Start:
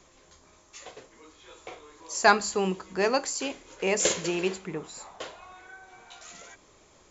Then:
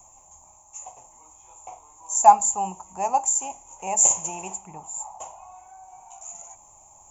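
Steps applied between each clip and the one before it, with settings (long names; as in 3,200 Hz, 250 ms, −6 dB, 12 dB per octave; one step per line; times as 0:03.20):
drawn EQ curve 100 Hz 0 dB, 450 Hz −16 dB, 840 Hz +14 dB, 1,600 Hz −22 dB, 2,600 Hz −7 dB, 4,300 Hz −27 dB, 6,900 Hz +13 dB
reversed playback
upward compression, threshold −45 dBFS
reversed playback
level −1 dB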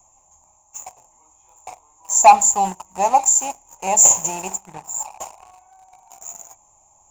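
leveller curve on the samples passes 2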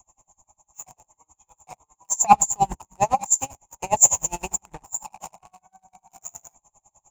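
sub-octave generator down 2 octaves, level +1 dB
tremolo with a sine in dB 9.9 Hz, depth 30 dB
level +2 dB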